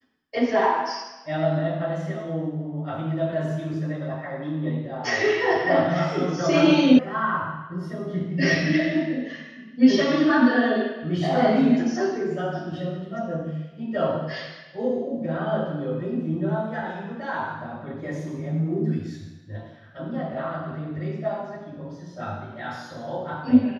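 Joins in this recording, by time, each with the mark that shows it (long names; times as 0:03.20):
0:06.99: cut off before it has died away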